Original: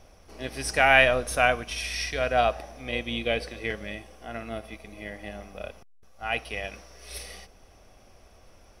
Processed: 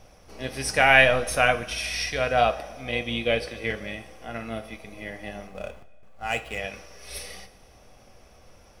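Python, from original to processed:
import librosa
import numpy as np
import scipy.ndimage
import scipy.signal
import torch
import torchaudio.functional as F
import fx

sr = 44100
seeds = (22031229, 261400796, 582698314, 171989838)

y = fx.median_filter(x, sr, points=9, at=(5.47, 6.58))
y = fx.rev_double_slope(y, sr, seeds[0], early_s=0.21, late_s=1.8, knee_db=-19, drr_db=7.0)
y = y * 10.0 ** (1.5 / 20.0)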